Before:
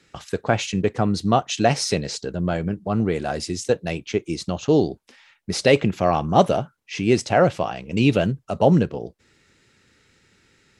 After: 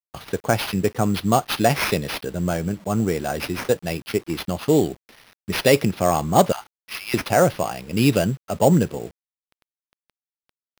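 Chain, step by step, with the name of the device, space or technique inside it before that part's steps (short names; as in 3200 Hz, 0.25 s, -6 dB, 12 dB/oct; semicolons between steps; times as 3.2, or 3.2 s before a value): 6.52–7.14 elliptic high-pass 850 Hz, stop band 40 dB; high shelf 4800 Hz +4 dB; early 8-bit sampler (sample-rate reducer 7600 Hz, jitter 0%; bit-crush 8-bit)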